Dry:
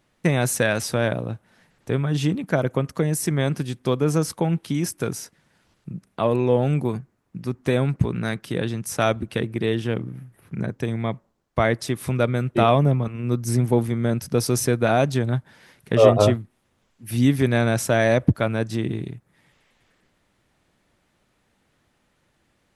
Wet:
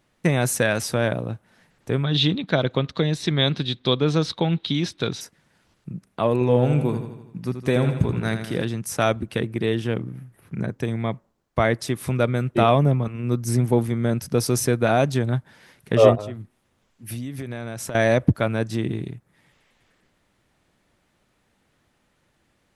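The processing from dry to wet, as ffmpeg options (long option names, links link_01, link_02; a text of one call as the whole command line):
ffmpeg -i in.wav -filter_complex "[0:a]asettb=1/sr,asplit=3[link_01][link_02][link_03];[link_01]atrim=end=2.044[link_04];[link_02]atrim=start=2.04:end=5.21,asetpts=PTS-STARTPTS,afade=type=in:duration=0.004:curve=qsin,afade=type=out:start_time=3.166:duration=0.004:curve=qsin,lowpass=frequency=3800:width_type=q:width=10[link_05];[link_03]atrim=start=5.206[link_06];[link_04][link_05]acrossfade=duration=0.004:curve1=hsin:curve2=qsin[link_07];[link_07][link_06]acrossfade=duration=0.004:curve1=qsin:curve2=hsin,asettb=1/sr,asplit=3[link_08][link_09][link_10];[link_08]atrim=end=6.334[link_11];[link_09]atrim=start=6.33:end=8.65,asetpts=PTS-STARTPTS,afade=type=in:duration=0.004:curve=qsin,afade=type=out:start_time=2.316:duration=0.004:curve=qsin,aecho=1:1:81|162|243|324|405|486|567:0.355|0.199|0.111|0.0623|0.0349|0.0195|0.0109,atrim=end_sample=102312[link_12];[link_10]atrim=start=8.646[link_13];[link_11][link_12]acrossfade=duration=0.004:curve1=hsin:curve2=qsin[link_14];[link_14][link_13]acrossfade=duration=0.004:curve1=qsin:curve2=hsin,asettb=1/sr,asplit=3[link_15][link_16][link_17];[link_15]atrim=end=16.154[link_18];[link_16]atrim=start=16.15:end=17.95,asetpts=PTS-STARTPTS,afade=type=in:duration=0.004:curve=qsin,afade=type=out:start_time=1.796:duration=0.004:curve=qsin,acompressor=threshold=-27dB:ratio=16:attack=3.2:release=140:knee=1:detection=peak[link_19];[link_17]atrim=start=17.946[link_20];[link_18][link_19]acrossfade=duration=0.004:curve1=hsin:curve2=qsin[link_21];[link_21][link_20]acrossfade=duration=0.004:curve1=qsin:curve2=hsin" out.wav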